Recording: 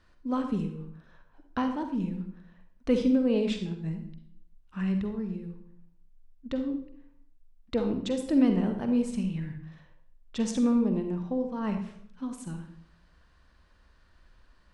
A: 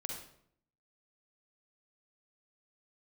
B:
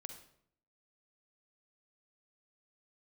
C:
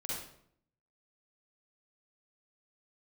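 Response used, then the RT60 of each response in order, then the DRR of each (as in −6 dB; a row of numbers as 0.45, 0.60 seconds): B; 0.65, 0.65, 0.65 seconds; 0.5, 6.0, −6.5 decibels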